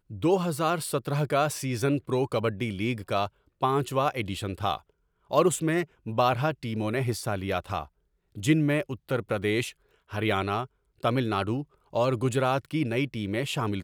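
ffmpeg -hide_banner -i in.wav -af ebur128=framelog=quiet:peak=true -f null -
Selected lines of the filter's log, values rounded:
Integrated loudness:
  I:         -28.0 LUFS
  Threshold: -38.2 LUFS
Loudness range:
  LRA:         1.6 LU
  Threshold: -48.4 LUFS
  LRA low:   -29.2 LUFS
  LRA high:  -27.6 LUFS
True peak:
  Peak:       -8.7 dBFS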